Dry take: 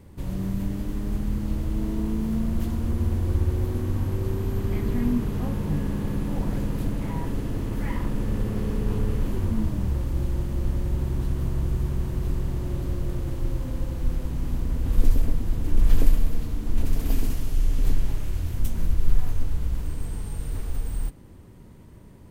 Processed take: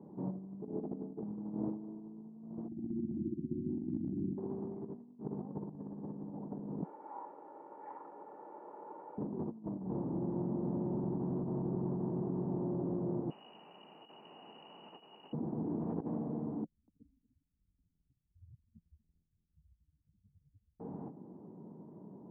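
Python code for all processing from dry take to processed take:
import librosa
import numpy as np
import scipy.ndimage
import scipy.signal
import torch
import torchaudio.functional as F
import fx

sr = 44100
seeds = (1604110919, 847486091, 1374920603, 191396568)

y = fx.chain(x, sr, fx.ring_mod(carrier_hz=230.0),
    fx.highpass(hz=64.0, slope=6), at=(0.62, 1.21))
y = fx.chain(y, sr, fx.over_compress(threshold_db=-25.0, ratio=-0.5),
    fx.brickwall_bandstop(low_hz=360.0, high_hz=2400.0), at=(2.68, 4.38))
y = fx.chain(y, sr, fx.lower_of_two(delay_ms=3.5),
    fx.highpass(hz=1200.0, slope=12),
    fx.comb(ms=2.2, depth=0.6), at=(6.83, 9.18))
y = fx.chain(y, sr, fx.freq_invert(carrier_hz=2900),
    fx.over_compress(threshold_db=-21.0, ratio=-1.0),
    fx.echo_single(ms=946, db=-4.0), at=(13.3, 15.33))
y = fx.chain(y, sr, fx.spec_expand(power=3.4),
    fx.echo_single(ms=239, db=-19.5), at=(16.64, 20.8))
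y = scipy.signal.sosfilt(scipy.signal.ellip(3, 1.0, 70, [170.0, 880.0], 'bandpass', fs=sr, output='sos'), y)
y = fx.notch(y, sr, hz=530.0, q=12.0)
y = fx.over_compress(y, sr, threshold_db=-36.0, ratio=-0.5)
y = y * librosa.db_to_amplitude(-2.0)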